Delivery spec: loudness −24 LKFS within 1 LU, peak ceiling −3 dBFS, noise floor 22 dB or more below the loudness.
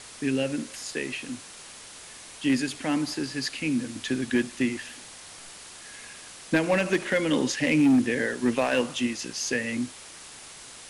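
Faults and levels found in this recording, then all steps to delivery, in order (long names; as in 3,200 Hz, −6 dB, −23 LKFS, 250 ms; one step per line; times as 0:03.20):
share of clipped samples 0.5%; peaks flattened at −15.5 dBFS; background noise floor −45 dBFS; target noise floor −49 dBFS; integrated loudness −26.5 LKFS; sample peak −15.5 dBFS; target loudness −24.0 LKFS
→ clipped peaks rebuilt −15.5 dBFS
broadband denoise 6 dB, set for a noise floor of −45 dBFS
level +2.5 dB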